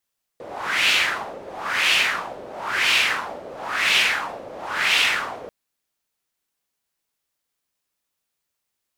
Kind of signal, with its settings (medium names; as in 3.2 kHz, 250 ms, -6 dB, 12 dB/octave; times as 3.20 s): wind-like swept noise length 5.09 s, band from 520 Hz, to 2.8 kHz, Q 2.8, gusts 5, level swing 19.5 dB